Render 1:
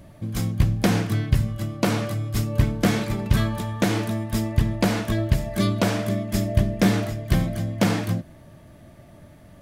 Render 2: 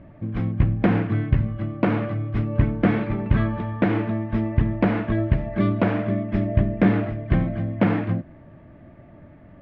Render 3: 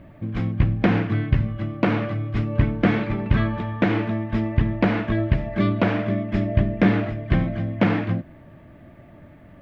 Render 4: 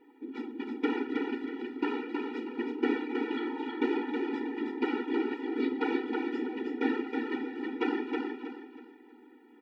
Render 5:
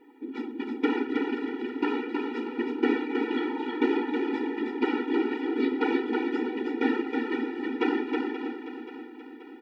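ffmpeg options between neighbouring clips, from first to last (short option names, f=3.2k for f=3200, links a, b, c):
-af "lowpass=f=2.4k:w=0.5412,lowpass=f=2.4k:w=1.3066,equalizer=f=290:w=2.1:g=4"
-af "crystalizer=i=3.5:c=0"
-af "afftfilt=real='hypot(re,im)*cos(2*PI*random(0))':imag='hypot(re,im)*sin(2*PI*random(1))':win_size=512:overlap=0.75,aecho=1:1:319|638|957|1276:0.631|0.202|0.0646|0.0207,afftfilt=real='re*eq(mod(floor(b*sr/1024/250),2),1)':imag='im*eq(mod(floor(b*sr/1024/250),2),1)':win_size=1024:overlap=0.75"
-af "aecho=1:1:530|1060|1590|2120|2650|3180:0.251|0.133|0.0706|0.0374|0.0198|0.0105,volume=4dB"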